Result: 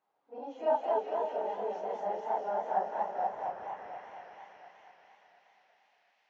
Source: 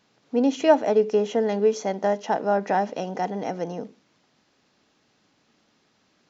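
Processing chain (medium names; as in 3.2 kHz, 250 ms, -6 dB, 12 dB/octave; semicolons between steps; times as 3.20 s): phase randomisation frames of 100 ms; 0.38–1.58 s: high-pass 290 Hz; on a send: echo that smears into a reverb 516 ms, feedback 41%, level -9.5 dB; 3.32–3.77 s: on the sum: LPC vocoder at 8 kHz whisper; band-pass sweep 830 Hz -> 2.2 kHz, 3.24–3.96 s; feedback echo behind a high-pass 206 ms, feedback 74%, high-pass 1.7 kHz, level -3 dB; modulated delay 236 ms, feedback 62%, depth 156 cents, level -4 dB; trim -7 dB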